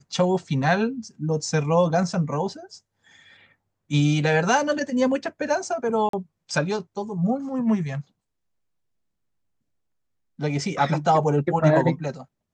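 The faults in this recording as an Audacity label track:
6.090000	6.130000	drop-out 43 ms

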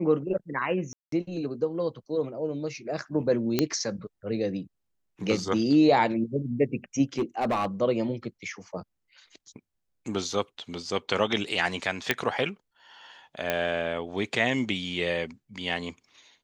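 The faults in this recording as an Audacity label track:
0.930000	1.120000	drop-out 193 ms
3.590000	3.590000	click −8 dBFS
7.180000	7.660000	clipping −21.5 dBFS
12.110000	12.110000	click −7 dBFS
13.500000	13.500000	click −11 dBFS

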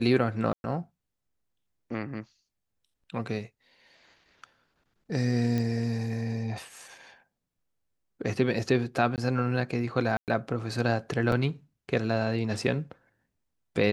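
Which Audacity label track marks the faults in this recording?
0.530000	0.640000	drop-out 111 ms
5.580000	5.580000	click −18 dBFS
9.160000	9.180000	drop-out 18 ms
10.170000	10.280000	drop-out 108 ms
11.320000	11.320000	drop-out 2.9 ms

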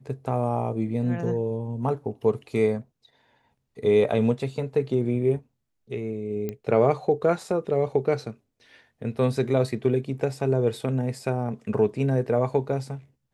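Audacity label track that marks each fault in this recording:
6.490000	6.490000	click −18 dBFS

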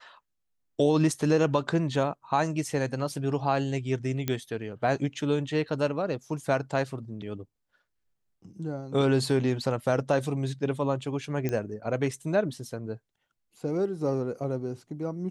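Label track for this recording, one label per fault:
4.280000	4.280000	click −13 dBFS
11.490000	11.490000	click −17 dBFS

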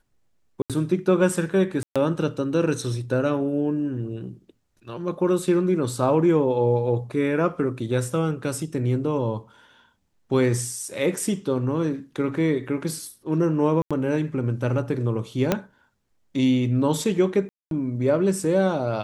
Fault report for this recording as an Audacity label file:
0.620000	0.700000	drop-out 77 ms
1.830000	1.960000	drop-out 126 ms
13.820000	13.910000	drop-out 86 ms
15.520000	15.520000	click −6 dBFS
17.490000	17.710000	drop-out 222 ms

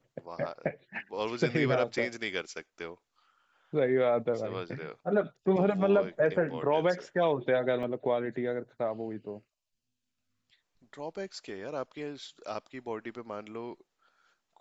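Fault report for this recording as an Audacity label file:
7.830000	7.830000	drop-out 2.8 ms

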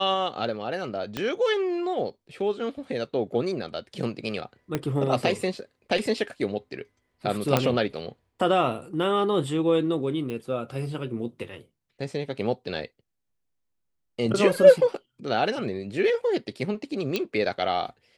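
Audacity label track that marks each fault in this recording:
1.170000	1.170000	click −14 dBFS
4.750000	4.750000	click −12 dBFS
7.570000	7.570000	click −6 dBFS
10.300000	10.300000	click −21 dBFS
17.160000	17.160000	click −12 dBFS

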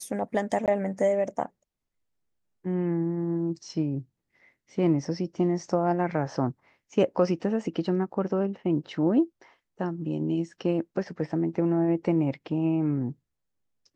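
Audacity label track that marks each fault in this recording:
0.660000	0.680000	drop-out 18 ms

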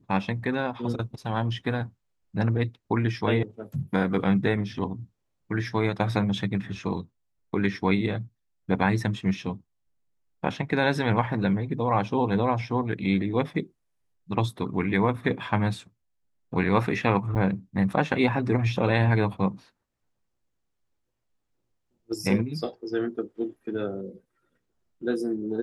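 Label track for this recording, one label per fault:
17.350000	17.360000	drop-out 7.7 ms

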